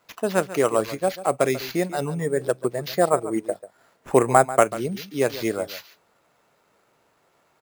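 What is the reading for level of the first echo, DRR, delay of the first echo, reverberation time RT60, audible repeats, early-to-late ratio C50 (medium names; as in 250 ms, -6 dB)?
-15.0 dB, no reverb, 141 ms, no reverb, 1, no reverb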